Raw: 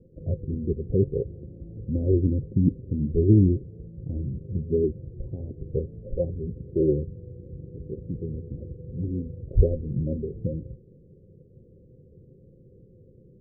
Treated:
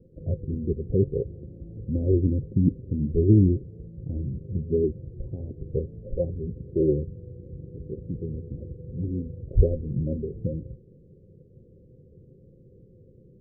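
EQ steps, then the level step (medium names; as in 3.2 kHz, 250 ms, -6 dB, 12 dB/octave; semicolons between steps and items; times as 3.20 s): distance through air 64 m; 0.0 dB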